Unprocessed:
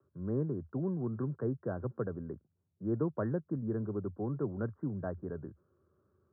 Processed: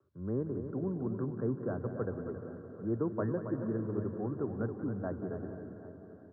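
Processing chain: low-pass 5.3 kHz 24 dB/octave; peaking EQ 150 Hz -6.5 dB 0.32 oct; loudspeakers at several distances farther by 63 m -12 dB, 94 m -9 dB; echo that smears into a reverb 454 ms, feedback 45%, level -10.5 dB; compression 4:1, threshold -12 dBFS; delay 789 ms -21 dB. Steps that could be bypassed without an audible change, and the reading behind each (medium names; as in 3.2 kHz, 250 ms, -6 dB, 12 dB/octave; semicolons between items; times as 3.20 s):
low-pass 5.3 kHz: input has nothing above 1.4 kHz; compression, threshold -12 dBFS: peak at its input -21.0 dBFS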